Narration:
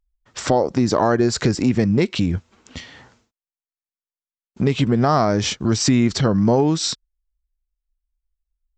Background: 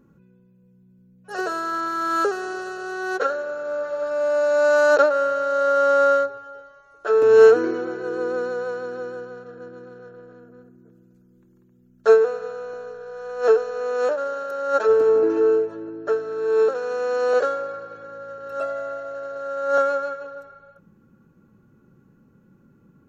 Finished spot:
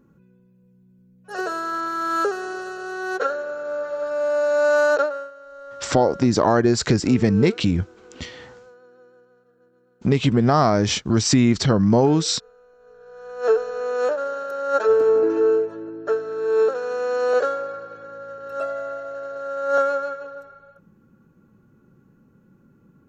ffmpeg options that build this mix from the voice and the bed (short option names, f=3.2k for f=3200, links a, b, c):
-filter_complex "[0:a]adelay=5450,volume=0dB[a];[1:a]volume=19.5dB,afade=t=out:st=4.81:d=0.5:silence=0.105925,afade=t=in:st=12.78:d=0.92:silence=0.1[b];[a][b]amix=inputs=2:normalize=0"